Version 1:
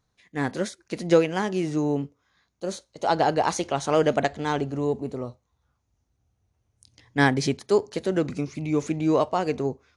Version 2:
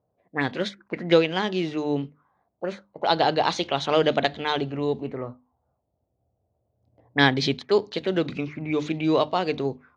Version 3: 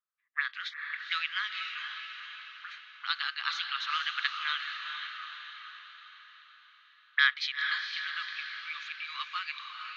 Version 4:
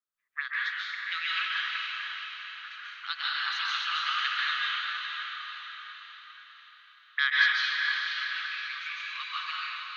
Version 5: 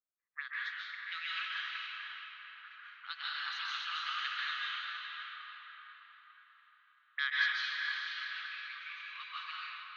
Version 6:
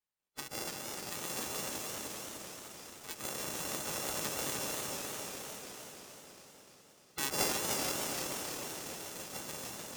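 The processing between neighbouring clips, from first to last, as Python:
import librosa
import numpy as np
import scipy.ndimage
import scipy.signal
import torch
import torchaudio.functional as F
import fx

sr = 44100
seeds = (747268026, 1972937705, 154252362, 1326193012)

y1 = scipy.signal.sosfilt(scipy.signal.butter(2, 83.0, 'highpass', fs=sr, output='sos'), x)
y1 = fx.hum_notches(y1, sr, base_hz=50, count=6)
y1 = fx.envelope_lowpass(y1, sr, base_hz=620.0, top_hz=3700.0, q=4.0, full_db=-23.5, direction='up')
y2 = scipy.signal.sosfilt(scipy.signal.cheby1(6, 1.0, 1200.0, 'highpass', fs=sr, output='sos'), y1)
y2 = fx.air_absorb(y2, sr, metres=180.0)
y2 = fx.echo_diffused(y2, sr, ms=463, feedback_pct=53, wet_db=-5.5)
y3 = fx.rev_plate(y2, sr, seeds[0], rt60_s=1.4, hf_ratio=0.8, predelay_ms=120, drr_db=-5.5)
y3 = F.gain(torch.from_numpy(y3), -3.0).numpy()
y4 = fx.env_lowpass(y3, sr, base_hz=1600.0, full_db=-25.0)
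y4 = F.gain(torch.from_numpy(y4), -8.0).numpy()
y5 = np.r_[np.sort(y4[:len(y4) // 64 * 64].reshape(-1, 64), axis=1).ravel(), y4[len(y4) // 64 * 64:]]
y5 = fx.spec_gate(y5, sr, threshold_db=-15, keep='weak')
y5 = fx.echo_warbled(y5, sr, ms=303, feedback_pct=58, rate_hz=2.8, cents=116, wet_db=-4.0)
y5 = F.gain(torch.from_numpy(y5), 6.0).numpy()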